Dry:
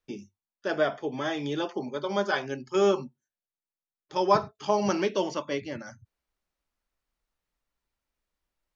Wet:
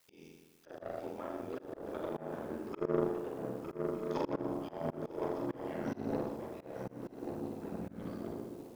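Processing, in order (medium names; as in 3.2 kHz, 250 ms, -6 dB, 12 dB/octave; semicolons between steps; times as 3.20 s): low-pass that closes with the level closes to 460 Hz, closed at -26 dBFS; bass shelf 380 Hz -12 dB; flutter echo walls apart 6.9 m, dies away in 1.2 s; Chebyshev shaper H 3 -15 dB, 4 -28 dB, 7 -34 dB, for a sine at -14 dBFS; word length cut 12-bit, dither triangular; ring modulator 42 Hz; shuffle delay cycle 1208 ms, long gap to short 3:1, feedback 32%, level -8 dB; ever faster or slower copies 698 ms, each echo -4 st, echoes 3, each echo -6 dB; slow attack 176 ms; trim +5 dB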